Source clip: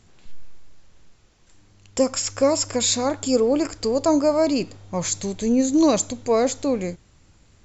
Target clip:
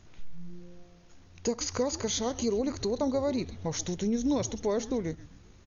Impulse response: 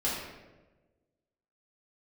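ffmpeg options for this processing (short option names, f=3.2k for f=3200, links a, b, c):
-filter_complex "[0:a]highshelf=f=3.8k:g=-3.5,acompressor=threshold=-33dB:ratio=2,asetrate=29433,aresample=44100,atempo=1.49831,asplit=5[a][b][c][d][e];[b]adelay=179,afreqshift=-130,volume=-15dB[f];[c]adelay=358,afreqshift=-260,volume=-23dB[g];[d]adelay=537,afreqshift=-390,volume=-30.9dB[h];[e]adelay=716,afreqshift=-520,volume=-38.9dB[i];[a][f][g][h][i]amix=inputs=5:normalize=0,asetrate=59535,aresample=44100"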